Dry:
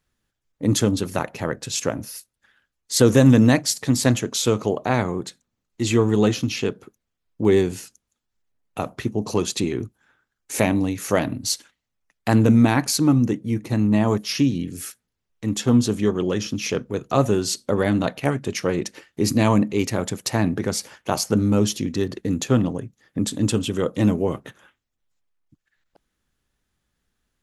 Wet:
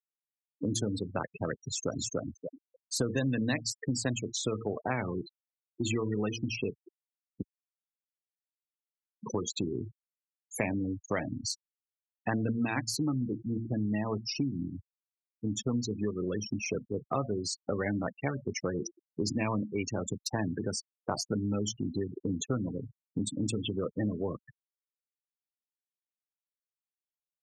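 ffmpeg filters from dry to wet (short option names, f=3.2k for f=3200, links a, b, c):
-filter_complex "[0:a]asplit=2[a][b];[b]afade=t=in:st=1.57:d=0.01,afade=t=out:st=2.03:d=0.01,aecho=0:1:290|580|870|1160:0.891251|0.267375|0.0802126|0.0240638[c];[a][c]amix=inputs=2:normalize=0,asplit=3[d][e][f];[d]atrim=end=7.42,asetpts=PTS-STARTPTS,afade=t=out:st=7.416:d=0.004:c=hsin[g];[e]atrim=start=7.42:end=9.23,asetpts=PTS-STARTPTS,volume=0[h];[f]atrim=start=9.23,asetpts=PTS-STARTPTS,afade=t=in:d=0.004:c=hsin[i];[g][h][i]concat=n=3:v=0:a=1,bandreject=f=114.4:t=h:w=4,bandreject=f=228.8:t=h:w=4,bandreject=f=343.2:t=h:w=4,bandreject=f=457.6:t=h:w=4,bandreject=f=572:t=h:w=4,bandreject=f=686.4:t=h:w=4,afftfilt=real='re*gte(hypot(re,im),0.0891)':imag='im*gte(hypot(re,im),0.0891)':win_size=1024:overlap=0.75,acrossover=split=83|1700[j][k][l];[j]acompressor=threshold=-46dB:ratio=4[m];[k]acompressor=threshold=-28dB:ratio=4[n];[l]acompressor=threshold=-31dB:ratio=4[o];[m][n][o]amix=inputs=3:normalize=0,volume=-2.5dB"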